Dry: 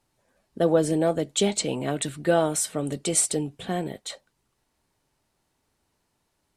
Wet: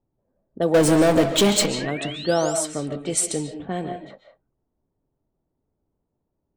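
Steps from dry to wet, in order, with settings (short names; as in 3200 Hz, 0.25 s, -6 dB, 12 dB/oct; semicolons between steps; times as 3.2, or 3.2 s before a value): low-pass opened by the level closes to 500 Hz, open at -20 dBFS; 0.74–1.66 power-law curve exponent 0.5; 1.8–2.59 painted sound rise 1600–8700 Hz -37 dBFS; on a send: reverb, pre-delay 0.1 s, DRR 6.5 dB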